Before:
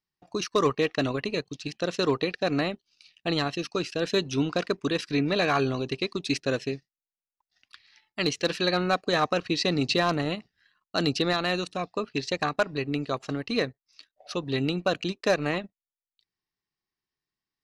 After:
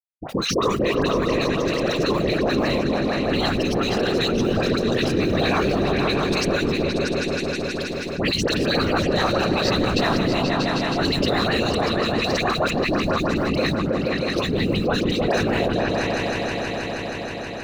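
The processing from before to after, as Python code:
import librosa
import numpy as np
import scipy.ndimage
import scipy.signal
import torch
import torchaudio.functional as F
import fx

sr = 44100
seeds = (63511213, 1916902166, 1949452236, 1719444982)

p1 = fx.law_mismatch(x, sr, coded='A')
p2 = fx.whisperise(p1, sr, seeds[0])
p3 = fx.dispersion(p2, sr, late='highs', ms=77.0, hz=1400.0)
p4 = p3 + fx.echo_opening(p3, sr, ms=159, hz=200, octaves=2, feedback_pct=70, wet_db=0, dry=0)
y = fx.env_flatten(p4, sr, amount_pct=70)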